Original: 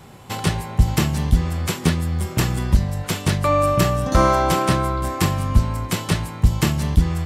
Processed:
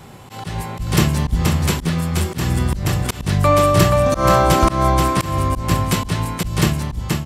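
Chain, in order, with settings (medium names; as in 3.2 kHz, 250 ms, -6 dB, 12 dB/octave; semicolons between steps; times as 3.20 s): fade out at the end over 0.73 s; delay 479 ms -4 dB; slow attack 172 ms; trim +3.5 dB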